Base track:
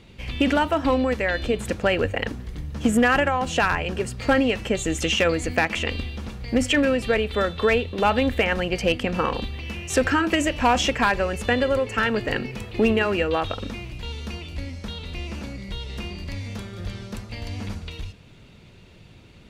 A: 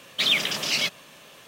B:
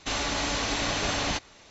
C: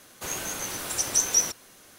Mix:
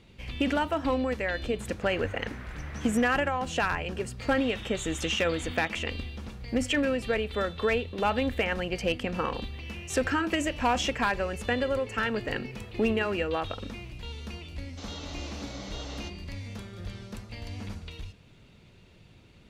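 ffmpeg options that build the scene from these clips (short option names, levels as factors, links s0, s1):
-filter_complex "[2:a]asplit=2[s0][s1];[0:a]volume=0.473[s2];[3:a]lowpass=f=2000:t=q:w=2.6[s3];[s0]lowpass=f=3200:t=q:w=0.5098,lowpass=f=3200:t=q:w=0.6013,lowpass=f=3200:t=q:w=0.9,lowpass=f=3200:t=q:w=2.563,afreqshift=-3800[s4];[s1]highpass=280,equalizer=f=280:t=q:w=4:g=9,equalizer=f=510:t=q:w=4:g=5,equalizer=f=990:t=q:w=4:g=-4,equalizer=f=1700:t=q:w=4:g=-9,equalizer=f=2500:t=q:w=4:g=-9,lowpass=f=6900:w=0.5412,lowpass=f=6900:w=1.3066[s5];[s3]atrim=end=1.98,asetpts=PTS-STARTPTS,volume=0.251,afade=t=in:d=0.004:c=hsin,afade=t=out:st=1.976:d=0.004:c=hsin,adelay=1600[s6];[s4]atrim=end=1.7,asetpts=PTS-STARTPTS,volume=0.168,afade=t=in:d=0.004:c=hsin,afade=t=out:st=1.696:d=0.004:c=hsin,adelay=4310[s7];[s5]atrim=end=1.7,asetpts=PTS-STARTPTS,volume=0.211,afade=t=in:d=0.004:c=hsin,afade=t=out:st=1.696:d=0.004:c=hsin,adelay=14710[s8];[s2][s6][s7][s8]amix=inputs=4:normalize=0"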